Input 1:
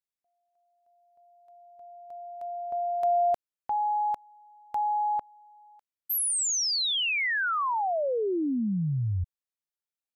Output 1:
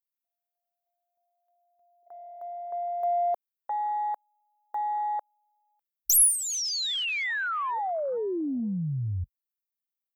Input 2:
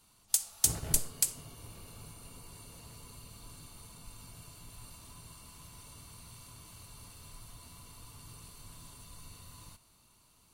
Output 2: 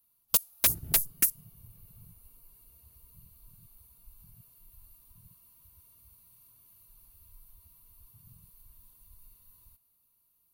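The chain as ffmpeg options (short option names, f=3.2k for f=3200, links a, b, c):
-af "aexciter=amount=6.3:drive=9.7:freq=11k,aeval=exprs='0.237*(abs(mod(val(0)/0.237+3,4)-2)-1)':c=same,afwtdn=0.0178,volume=-2dB"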